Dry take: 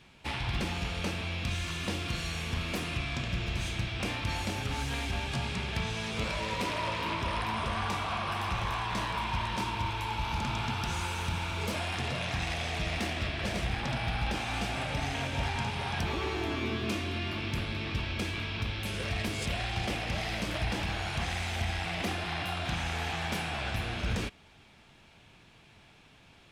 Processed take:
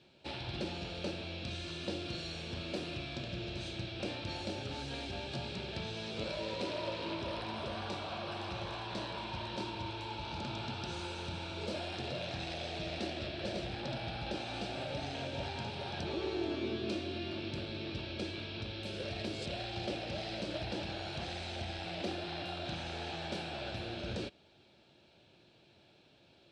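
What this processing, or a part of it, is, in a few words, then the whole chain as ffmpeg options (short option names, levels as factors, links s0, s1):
car door speaker: -af "highpass=88,equalizer=f=350:t=q:w=4:g=9,equalizer=f=570:t=q:w=4:g=9,equalizer=f=1100:t=q:w=4:g=-8,equalizer=f=2000:t=q:w=4:g=-8,equalizer=f=4100:t=q:w=4:g=7,equalizer=f=6700:t=q:w=4:g=-6,lowpass=f=7700:w=0.5412,lowpass=f=7700:w=1.3066,volume=0.447"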